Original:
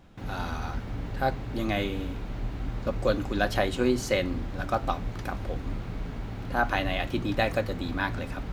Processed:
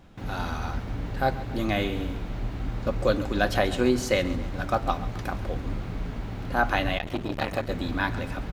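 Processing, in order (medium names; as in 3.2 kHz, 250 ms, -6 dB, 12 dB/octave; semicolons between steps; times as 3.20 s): on a send: feedback delay 136 ms, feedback 47%, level -16 dB; 6.98–7.69 s: on the sum: transformer saturation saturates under 1 kHz; trim +2 dB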